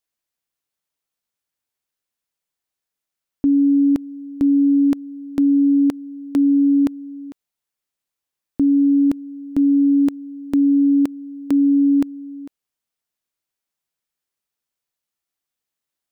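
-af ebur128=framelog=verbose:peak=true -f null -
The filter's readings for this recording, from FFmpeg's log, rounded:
Integrated loudness:
  I:         -17.4 LUFS
  Threshold: -28.2 LUFS
Loudness range:
  LRA:         5.1 LU
  Threshold: -39.6 LUFS
  LRA low:   -22.7 LUFS
  LRA high:  -17.6 LUFS
True peak:
  Peak:      -10.3 dBFS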